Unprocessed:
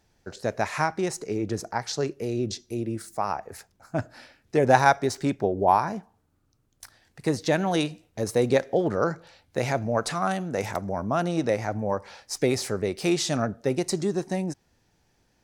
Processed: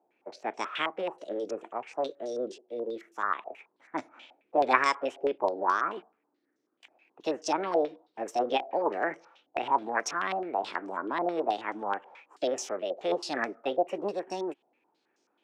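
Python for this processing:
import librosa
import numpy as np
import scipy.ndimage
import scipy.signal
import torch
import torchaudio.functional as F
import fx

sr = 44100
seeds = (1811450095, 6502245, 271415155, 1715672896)

y = fx.formant_shift(x, sr, semitones=6)
y = fx.ladder_highpass(y, sr, hz=270.0, resonance_pct=45)
y = fx.filter_held_lowpass(y, sr, hz=9.3, low_hz=740.0, high_hz=5700.0)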